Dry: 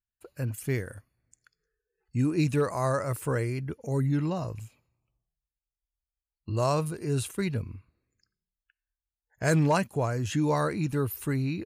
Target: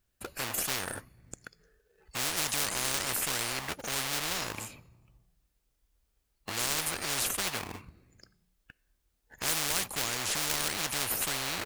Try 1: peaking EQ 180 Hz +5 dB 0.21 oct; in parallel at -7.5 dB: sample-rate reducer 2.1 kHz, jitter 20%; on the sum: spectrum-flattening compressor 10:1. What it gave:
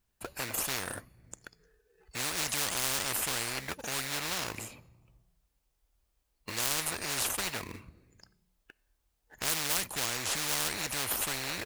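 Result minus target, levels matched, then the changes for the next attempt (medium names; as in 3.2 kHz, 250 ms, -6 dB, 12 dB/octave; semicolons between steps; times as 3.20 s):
sample-rate reducer: distortion -6 dB
change: sample-rate reducer 990 Hz, jitter 20%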